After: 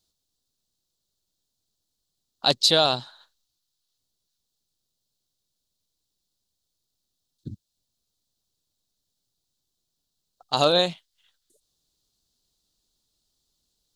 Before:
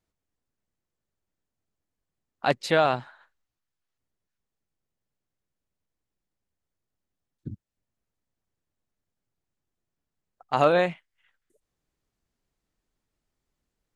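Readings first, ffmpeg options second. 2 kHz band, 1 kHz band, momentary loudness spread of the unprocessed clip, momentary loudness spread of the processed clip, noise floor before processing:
−3.5 dB, −1.0 dB, 21 LU, 10 LU, below −85 dBFS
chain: -af "highshelf=frequency=2900:width_type=q:width=3:gain=11"

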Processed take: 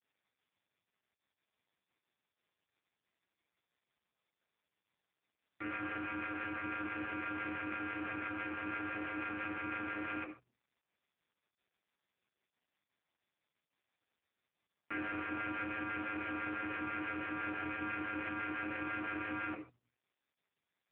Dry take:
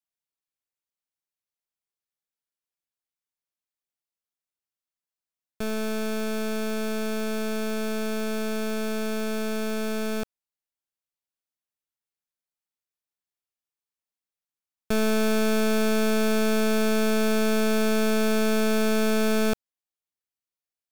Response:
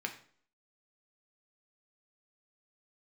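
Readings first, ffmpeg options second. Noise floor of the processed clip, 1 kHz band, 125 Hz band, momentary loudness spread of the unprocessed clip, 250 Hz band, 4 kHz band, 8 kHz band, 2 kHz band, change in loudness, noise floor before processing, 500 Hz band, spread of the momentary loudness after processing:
below −85 dBFS, −7.0 dB, can't be measured, 6 LU, −16.5 dB, −21.5 dB, below −40 dB, −6.5 dB, −13.5 dB, below −85 dBFS, −23.5 dB, 2 LU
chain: -filter_complex "[0:a]bandreject=frequency=50:width_type=h:width=6,bandreject=frequency=100:width_type=h:width=6,bandreject=frequency=150:width_type=h:width=6,bandreject=frequency=200:width_type=h:width=6,bandreject=frequency=250:width_type=h:width=6,aeval=exprs='clip(val(0),-1,0.0106)':channel_layout=same,equalizer=frequency=1700:width_type=o:width=0.85:gain=-3,alimiter=limit=-24dB:level=0:latency=1:release=15,acrossover=split=680[link_01][link_02];[link_01]aeval=exprs='val(0)*(1-0.5/2+0.5/2*cos(2*PI*6*n/s))':channel_layout=same[link_03];[link_02]aeval=exprs='val(0)*(1-0.5/2-0.5/2*cos(2*PI*6*n/s))':channel_layout=same[link_04];[link_03][link_04]amix=inputs=2:normalize=0,aemphasis=mode=production:type=riaa,highpass=frequency=230:width_type=q:width=0.5412,highpass=frequency=230:width_type=q:width=1.307,lowpass=frequency=2400:width_type=q:width=0.5176,lowpass=frequency=2400:width_type=q:width=0.7071,lowpass=frequency=2400:width_type=q:width=1.932,afreqshift=-130[link_05];[1:a]atrim=start_sample=2205,afade=type=out:start_time=0.21:duration=0.01,atrim=end_sample=9702[link_06];[link_05][link_06]afir=irnorm=-1:irlink=0,volume=4.5dB" -ar 8000 -c:a libopencore_amrnb -b:a 4750

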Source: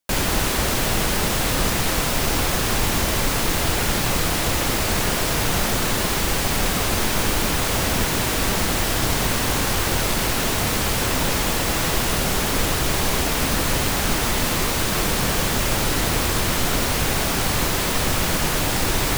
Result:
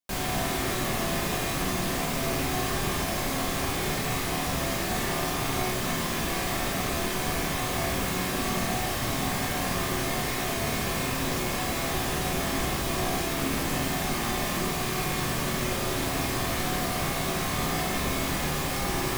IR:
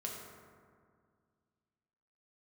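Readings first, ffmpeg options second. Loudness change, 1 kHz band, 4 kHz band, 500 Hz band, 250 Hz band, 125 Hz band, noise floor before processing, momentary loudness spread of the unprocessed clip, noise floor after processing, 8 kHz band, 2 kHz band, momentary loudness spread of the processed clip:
−7.5 dB, −5.0 dB, −8.5 dB, −5.5 dB, −5.0 dB, −7.0 dB, −22 dBFS, 0 LU, −30 dBFS, −9.0 dB, −6.5 dB, 1 LU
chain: -filter_complex "[1:a]atrim=start_sample=2205,asetrate=74970,aresample=44100[link_01];[0:a][link_01]afir=irnorm=-1:irlink=0,volume=-2.5dB"

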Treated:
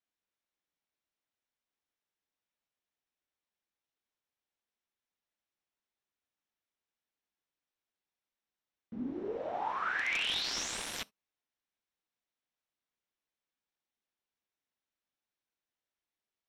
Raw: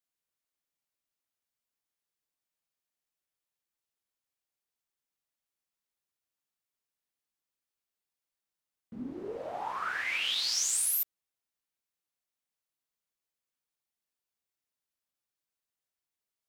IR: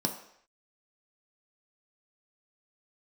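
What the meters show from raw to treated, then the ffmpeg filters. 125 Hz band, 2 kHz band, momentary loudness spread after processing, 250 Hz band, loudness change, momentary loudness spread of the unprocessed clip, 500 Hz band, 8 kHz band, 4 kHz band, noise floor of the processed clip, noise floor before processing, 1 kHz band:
+1.5 dB, +0.5 dB, 11 LU, +2.0 dB, −4.5 dB, 14 LU, +1.5 dB, −11.5 dB, −3.0 dB, below −85 dBFS, below −85 dBFS, +1.0 dB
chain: -filter_complex "[0:a]aeval=exprs='(mod(15.8*val(0)+1,2)-1)/15.8':channel_layout=same,lowpass=4200,asplit=2[link_01][link_02];[1:a]atrim=start_sample=2205,atrim=end_sample=3528,highshelf=frequency=3500:gain=11[link_03];[link_02][link_03]afir=irnorm=-1:irlink=0,volume=-24dB[link_04];[link_01][link_04]amix=inputs=2:normalize=0"

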